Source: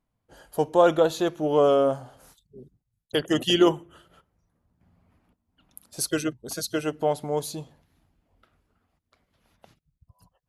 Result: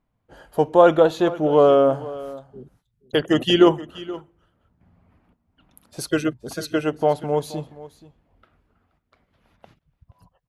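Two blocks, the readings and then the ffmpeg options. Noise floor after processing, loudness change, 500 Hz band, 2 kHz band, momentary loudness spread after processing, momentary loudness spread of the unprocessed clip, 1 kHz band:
-74 dBFS, +5.0 dB, +5.0 dB, +4.5 dB, 19 LU, 15 LU, +5.0 dB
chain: -af "bass=f=250:g=0,treble=f=4k:g=-11,aecho=1:1:476:0.126,volume=5dB"

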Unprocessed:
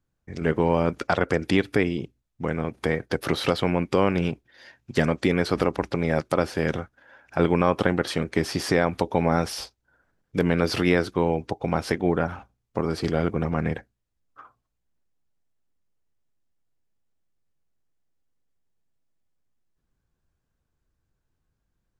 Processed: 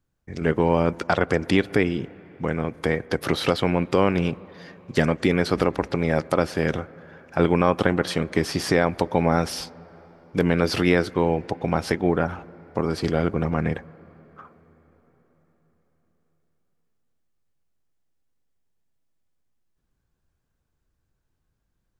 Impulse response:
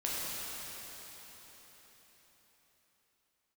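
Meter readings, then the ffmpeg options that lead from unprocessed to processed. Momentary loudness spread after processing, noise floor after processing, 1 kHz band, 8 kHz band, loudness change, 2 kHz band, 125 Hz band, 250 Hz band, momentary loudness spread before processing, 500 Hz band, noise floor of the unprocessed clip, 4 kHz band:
10 LU, -75 dBFS, +1.5 dB, +1.5 dB, +1.5 dB, +1.5 dB, +1.5 dB, +1.5 dB, 10 LU, +1.5 dB, -78 dBFS, +1.5 dB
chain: -filter_complex "[0:a]asplit=2[a][b];[1:a]atrim=start_sample=2205,lowpass=2.3k,adelay=119[c];[b][c]afir=irnorm=-1:irlink=0,volume=-27dB[d];[a][d]amix=inputs=2:normalize=0,volume=1.5dB"

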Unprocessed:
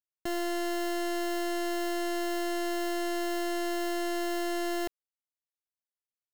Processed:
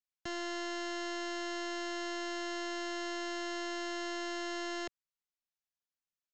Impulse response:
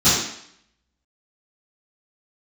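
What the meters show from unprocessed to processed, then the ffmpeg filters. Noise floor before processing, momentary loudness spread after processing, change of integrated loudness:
under -85 dBFS, 1 LU, -6.0 dB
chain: -filter_complex "[0:a]acrossover=split=200|750|2300[a][b][c][d];[b]aeval=exprs='max(val(0),0)':c=same[e];[a][e][c][d]amix=inputs=4:normalize=0,aresample=16000,aresample=44100,volume=-2dB"

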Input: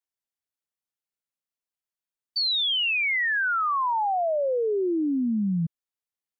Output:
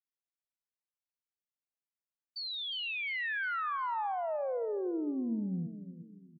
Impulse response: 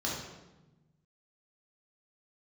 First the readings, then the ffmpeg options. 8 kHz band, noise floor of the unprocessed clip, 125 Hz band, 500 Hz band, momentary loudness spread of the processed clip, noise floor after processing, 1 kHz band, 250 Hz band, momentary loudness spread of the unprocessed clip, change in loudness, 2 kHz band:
n/a, under -85 dBFS, -10.0 dB, -9.5 dB, 10 LU, under -85 dBFS, -9.5 dB, -9.0 dB, 5 LU, -10.5 dB, -10.5 dB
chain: -filter_complex "[0:a]highpass=150,highshelf=f=3.7k:g=-11,aecho=1:1:356|712|1068|1424:0.224|0.0873|0.0341|0.0133,asplit=2[a][b];[1:a]atrim=start_sample=2205[c];[b][c]afir=irnorm=-1:irlink=0,volume=-22dB[d];[a][d]amix=inputs=2:normalize=0,volume=-9dB"

